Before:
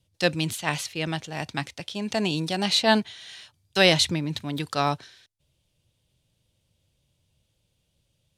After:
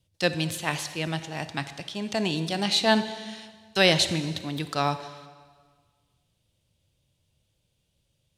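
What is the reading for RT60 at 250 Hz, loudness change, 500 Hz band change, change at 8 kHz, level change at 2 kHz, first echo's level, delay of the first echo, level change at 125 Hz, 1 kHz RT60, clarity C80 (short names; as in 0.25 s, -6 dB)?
1.5 s, -1.5 dB, -1.0 dB, -1.0 dB, -1.0 dB, none, none, -1.0 dB, 1.6 s, 13.0 dB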